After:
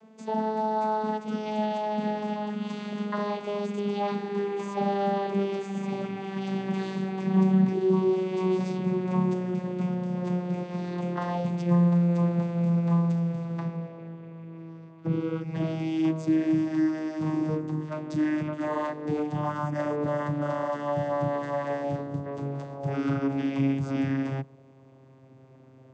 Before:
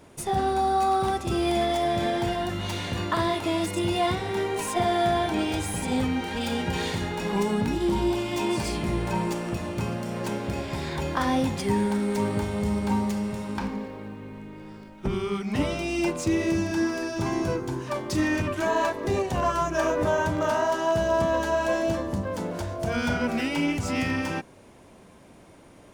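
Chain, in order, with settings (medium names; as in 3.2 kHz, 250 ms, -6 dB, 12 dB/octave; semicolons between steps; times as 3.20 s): vocoder on a note that slides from A3, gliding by -9 st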